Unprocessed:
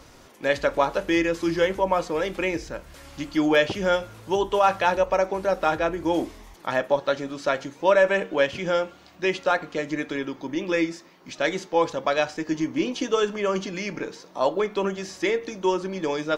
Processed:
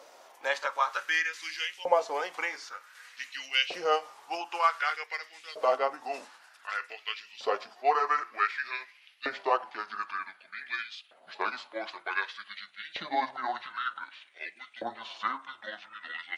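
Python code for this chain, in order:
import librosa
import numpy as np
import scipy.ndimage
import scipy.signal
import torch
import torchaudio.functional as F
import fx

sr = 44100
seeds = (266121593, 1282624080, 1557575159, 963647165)

y = fx.pitch_glide(x, sr, semitones=-10.0, runs='starting unshifted')
y = fx.dynamic_eq(y, sr, hz=6100.0, q=0.73, threshold_db=-49.0, ratio=4.0, max_db=4)
y = fx.filter_lfo_highpass(y, sr, shape='saw_up', hz=0.54, low_hz=560.0, high_hz=2900.0, q=2.7)
y = y * 10.0 ** (-5.0 / 20.0)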